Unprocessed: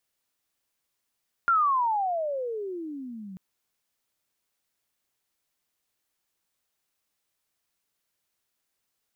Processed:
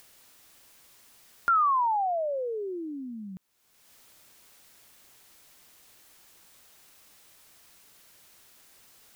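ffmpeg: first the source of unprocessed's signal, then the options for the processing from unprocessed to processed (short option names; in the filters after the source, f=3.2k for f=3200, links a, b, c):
-f lavfi -i "aevalsrc='pow(10,(-18-20*t/1.89)/20)*sin(2*PI*1410*1.89/(-35.5*log(2)/12)*(exp(-35.5*log(2)/12*t/1.89)-1))':d=1.89:s=44100"
-af "acompressor=mode=upward:threshold=-38dB:ratio=2.5"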